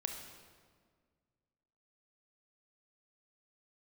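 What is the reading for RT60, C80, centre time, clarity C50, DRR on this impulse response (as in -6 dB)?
1.8 s, 6.5 dB, 42 ms, 5.0 dB, 3.5 dB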